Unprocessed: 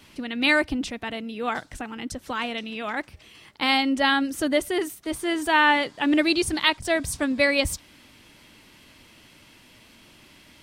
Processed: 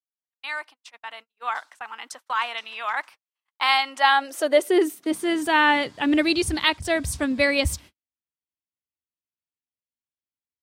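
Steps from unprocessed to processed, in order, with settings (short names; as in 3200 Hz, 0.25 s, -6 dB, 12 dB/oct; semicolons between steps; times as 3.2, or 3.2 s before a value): opening faded in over 2.28 s; high-pass sweep 1000 Hz -> 68 Hz, 3.95–6.1; gate -42 dBFS, range -55 dB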